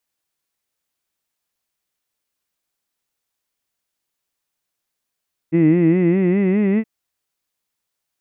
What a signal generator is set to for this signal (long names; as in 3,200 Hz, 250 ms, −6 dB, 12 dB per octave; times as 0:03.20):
vowel from formants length 1.32 s, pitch 158 Hz, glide +5 semitones, vibrato 4.9 Hz, vibrato depth 1.1 semitones, F1 310 Hz, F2 2,000 Hz, F3 2,600 Hz